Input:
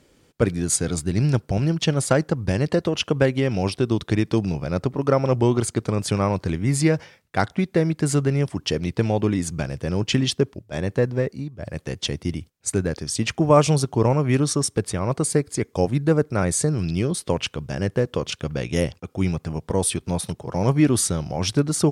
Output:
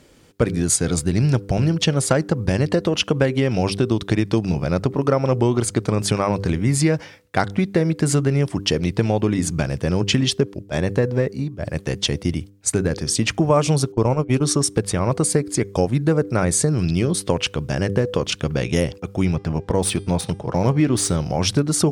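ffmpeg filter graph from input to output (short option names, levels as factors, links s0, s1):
-filter_complex "[0:a]asettb=1/sr,asplit=3[s0][s1][s2];[s0]atrim=end=13.924[s3];[s1]atrim=start=13.92:end=14.44,asetpts=PTS-STARTPTS,afade=t=in:d=0.004:c=qsin,afade=t=out:st=0.516:d=0.004:c=qsin,agate=range=0.0282:threshold=0.1:ratio=16:release=100:detection=peak,equalizer=f=1800:w=5.4:g=-7.5[s4];[s2]atrim=start=14.436[s5];[s3][s4]acrossfade=d=0.004:c1=hsin:c2=qsin[s6];[s6][s5]acrossfade=d=0.004:c1=qsin:c2=hsin,asettb=1/sr,asplit=3[s7][s8][s9];[s7]atrim=end=19.254[s10];[s8]atrim=start=19.25:end=21.16,asetpts=PTS-STARTPTS,afade=t=in:d=0.004:c=qsin,afade=t=out:st=1.906:d=0.004:c=qsin,bandreject=f=400.4:t=h:w=4,bandreject=f=800.8:t=h:w=4,bandreject=f=1201.2:t=h:w=4,bandreject=f=1601.6:t=h:w=4,bandreject=f=2002:t=h:w=4,bandreject=f=2402.4:t=h:w=4,bandreject=f=2802.8:t=h:w=4,bandreject=f=3203.2:t=h:w=4,bandreject=f=3603.6:t=h:w=4,bandreject=f=4004:t=h:w=4,bandreject=f=4404.4:t=h:w=4,bandreject=f=4804.8:t=h:w=4,bandreject=f=5205.2:t=h:w=4,bandreject=f=5605.6:t=h:w=4,bandreject=f=6006:t=h:w=4,bandreject=f=6406.4:t=h:w=4,bandreject=f=6806.8:t=h:w=4,bandreject=f=7207.2:t=h:w=4,bandreject=f=7607.6:t=h:w=4,bandreject=f=8008:t=h:w=4,bandreject=f=8408.4:t=h:w=4,bandreject=f=8808.8:t=h:w=4,bandreject=f=9209.2:t=h:w=4,bandreject=f=9609.6:t=h:w=4,bandreject=f=10010:t=h:w=4,bandreject=f=10410.4:t=h:w=4,bandreject=f=10810.8:t=h:w=4,bandreject=f=11211.2:t=h:w=4,adynamicsmooth=sensitivity=6:basefreq=5400[s11];[s9]atrim=start=21.156[s12];[s10][s11]acrossfade=d=0.004:c1=hsin:c2=qsin[s13];[s13][s12]acrossfade=d=0.004:c1=qsin:c2=hsin,bandreject=f=99.01:t=h:w=4,bandreject=f=198.02:t=h:w=4,bandreject=f=297.03:t=h:w=4,bandreject=f=396.04:t=h:w=4,bandreject=f=495.05:t=h:w=4,acompressor=threshold=0.0794:ratio=2.5,volume=2"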